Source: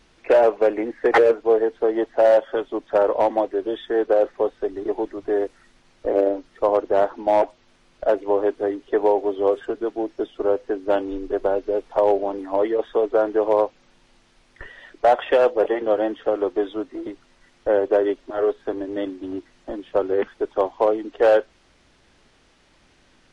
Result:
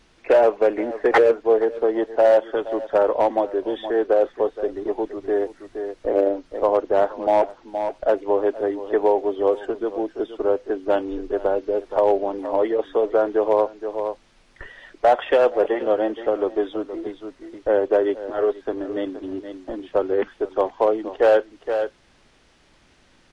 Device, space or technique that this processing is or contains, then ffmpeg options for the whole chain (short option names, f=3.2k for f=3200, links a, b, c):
ducked delay: -filter_complex "[0:a]asplit=3[a][b][c];[b]adelay=471,volume=-7.5dB[d];[c]apad=whole_len=1049616[e];[d][e]sidechaincompress=threshold=-35dB:ratio=4:attack=16:release=178[f];[a][f]amix=inputs=2:normalize=0"